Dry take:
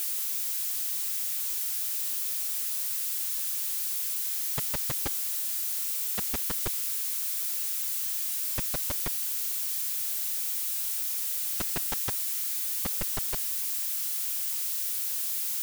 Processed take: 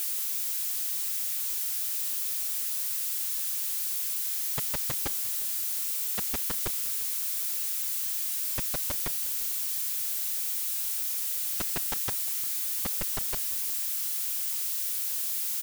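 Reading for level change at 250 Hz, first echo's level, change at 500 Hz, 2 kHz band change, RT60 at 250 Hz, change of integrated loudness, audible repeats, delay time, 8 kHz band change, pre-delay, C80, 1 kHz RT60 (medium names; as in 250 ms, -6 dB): -1.0 dB, -19.5 dB, -0.5 dB, 0.0 dB, no reverb, 0.0 dB, 3, 352 ms, 0.0 dB, no reverb, no reverb, no reverb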